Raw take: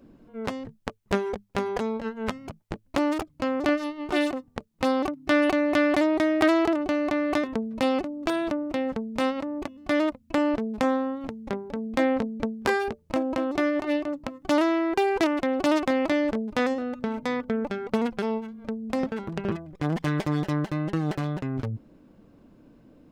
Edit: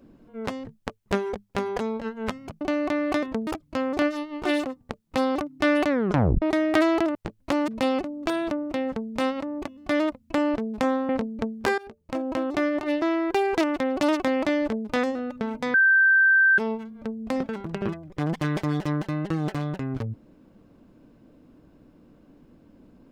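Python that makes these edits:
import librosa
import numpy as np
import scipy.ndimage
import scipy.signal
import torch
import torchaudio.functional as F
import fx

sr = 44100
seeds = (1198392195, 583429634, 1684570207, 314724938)

y = fx.edit(x, sr, fx.swap(start_s=2.61, length_s=0.53, other_s=6.82, other_length_s=0.86),
    fx.tape_stop(start_s=5.56, length_s=0.53),
    fx.cut(start_s=11.09, length_s=1.01),
    fx.fade_in_from(start_s=12.79, length_s=0.58, floor_db=-20.5),
    fx.cut(start_s=14.03, length_s=0.62),
    fx.bleep(start_s=17.37, length_s=0.84, hz=1560.0, db=-14.5), tone=tone)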